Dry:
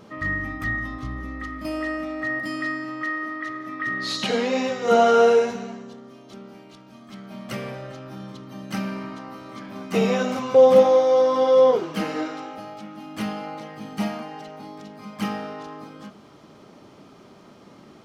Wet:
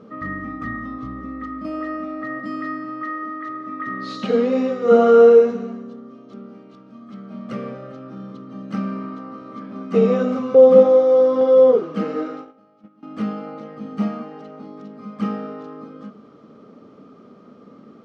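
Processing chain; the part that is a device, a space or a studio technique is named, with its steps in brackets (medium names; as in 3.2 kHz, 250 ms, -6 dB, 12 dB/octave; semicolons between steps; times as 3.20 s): inside a cardboard box (low-pass 5.7 kHz 12 dB/octave; small resonant body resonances 240/450/1200 Hz, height 16 dB, ringing for 25 ms); 11.41–13.03 s: gate -22 dBFS, range -18 dB; trim -9.5 dB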